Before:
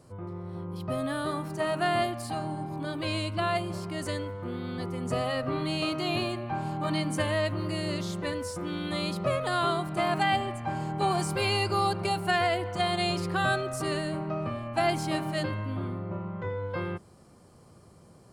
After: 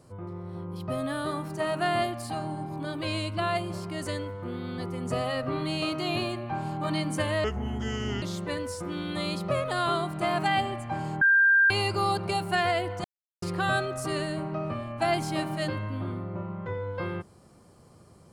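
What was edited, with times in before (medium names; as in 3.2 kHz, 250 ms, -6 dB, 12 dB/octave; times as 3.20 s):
7.44–7.98 s: speed 69%
10.97–11.46 s: bleep 1.59 kHz -16.5 dBFS
12.80–13.18 s: mute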